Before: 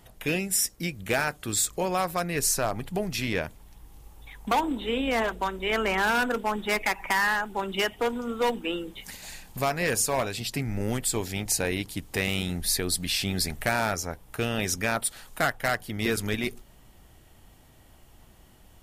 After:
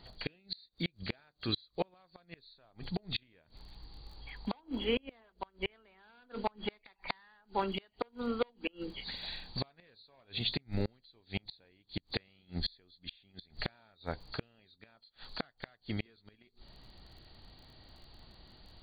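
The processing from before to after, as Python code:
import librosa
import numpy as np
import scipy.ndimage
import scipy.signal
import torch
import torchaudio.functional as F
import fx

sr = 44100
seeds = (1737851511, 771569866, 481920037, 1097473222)

y = fx.freq_compress(x, sr, knee_hz=3200.0, ratio=4.0)
y = fx.dmg_crackle(y, sr, seeds[0], per_s=31.0, level_db=-48.0)
y = fx.gate_flip(y, sr, shuts_db=-18.0, range_db=-35)
y = y * 10.0 ** (-2.5 / 20.0)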